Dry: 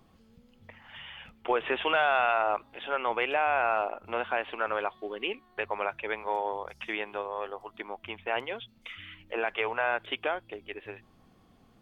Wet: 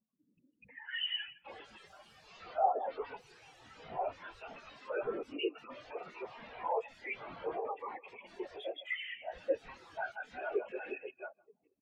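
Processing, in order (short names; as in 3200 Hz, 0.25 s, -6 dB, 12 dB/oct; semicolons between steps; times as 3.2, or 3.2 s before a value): rattling part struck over -51 dBFS, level -38 dBFS; whisperiser; low shelf 230 Hz -12 dB; on a send: echo 0.952 s -22 dB; on the sum: soft clip -26 dBFS, distortion -12 dB; in parallel at -1 dB: compressor, threshold -44 dBFS, peak gain reduction 14.5 dB; 2.28–3.13 on the sum: bell 2900 Hz -14.5 dB 1.7 oct; feedback echo 0.161 s, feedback 40%, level -9.5 dB; sine folder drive 17 dB, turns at -22 dBFS; spectral expander 4:1; gain +2 dB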